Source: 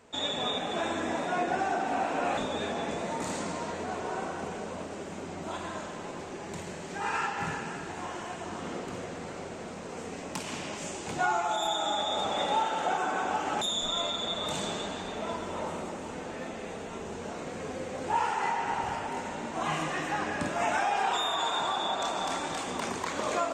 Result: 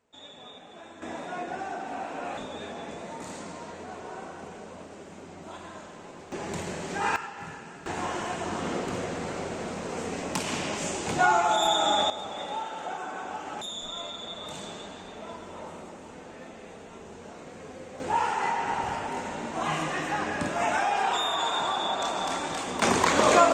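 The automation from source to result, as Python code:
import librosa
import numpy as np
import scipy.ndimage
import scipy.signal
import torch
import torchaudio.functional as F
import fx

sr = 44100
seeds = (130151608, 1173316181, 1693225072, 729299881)

y = fx.gain(x, sr, db=fx.steps((0.0, -15.5), (1.02, -5.5), (6.32, 5.0), (7.16, -7.0), (7.86, 6.0), (12.1, -6.0), (18.0, 2.0), (22.82, 11.0)))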